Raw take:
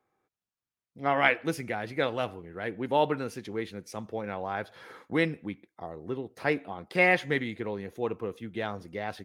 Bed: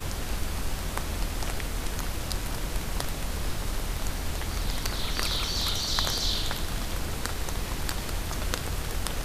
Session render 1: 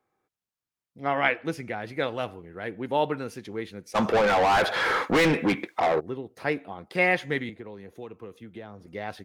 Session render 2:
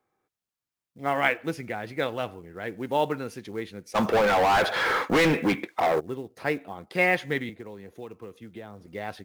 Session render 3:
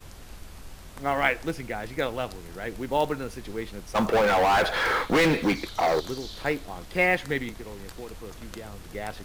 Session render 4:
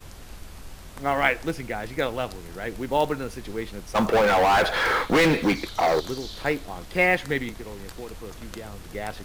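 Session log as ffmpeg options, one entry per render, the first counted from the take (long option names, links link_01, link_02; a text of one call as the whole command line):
ffmpeg -i in.wav -filter_complex "[0:a]asettb=1/sr,asplit=3[link_01][link_02][link_03];[link_01]atrim=end=1.194[link_04];[link_02]atrim=start=1.19:end=1.85,asetpts=PTS-STARTPTS,afade=type=in:duration=0.004:curve=qsin,afade=type=out:start_time=0.656:duration=0.004:curve=qsin,highshelf=frequency=7900:gain=-9[link_05];[link_03]atrim=start=1.846[link_06];[link_04][link_05]acrossfade=duration=0.004:curve1=hsin:curve2=qsin[link_07];[link_07][link_06]acrossfade=duration=0.004:curve1=qsin:curve2=hsin,asplit=3[link_08][link_09][link_10];[link_08]afade=type=out:start_time=3.94:duration=0.02[link_11];[link_09]asplit=2[link_12][link_13];[link_13]highpass=frequency=720:poles=1,volume=36dB,asoftclip=type=tanh:threshold=-13dB[link_14];[link_12][link_14]amix=inputs=2:normalize=0,lowpass=frequency=2900:poles=1,volume=-6dB,afade=type=in:start_time=3.94:duration=0.02,afade=type=out:start_time=5.99:duration=0.02[link_15];[link_10]afade=type=in:start_time=5.99:duration=0.02[link_16];[link_11][link_15][link_16]amix=inputs=3:normalize=0,asettb=1/sr,asplit=3[link_17][link_18][link_19];[link_17]atrim=end=7.494[link_20];[link_18]atrim=start=7.49:end=8.87,asetpts=PTS-STARTPTS,afade=type=in:duration=0.004:curve=qsin,afade=type=out:start_time=1.376:duration=0.004:curve=qsin,acrossover=split=420|1400[link_21][link_22][link_23];[link_21]acompressor=threshold=-42dB:ratio=4[link_24];[link_22]acompressor=threshold=-46dB:ratio=4[link_25];[link_23]acompressor=threshold=-56dB:ratio=4[link_26];[link_24][link_25][link_26]amix=inputs=3:normalize=0[link_27];[link_19]atrim=start=8.866[link_28];[link_20][link_27]acrossfade=duration=0.004:curve1=hsin:curve2=qsin[link_29];[link_29][link_28]acrossfade=duration=0.004:curve1=qsin:curve2=hsin" out.wav
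ffmpeg -i in.wav -af "acrusher=bits=7:mode=log:mix=0:aa=0.000001" out.wav
ffmpeg -i in.wav -i bed.wav -filter_complex "[1:a]volume=-13dB[link_01];[0:a][link_01]amix=inputs=2:normalize=0" out.wav
ffmpeg -i in.wav -af "volume=2dB" out.wav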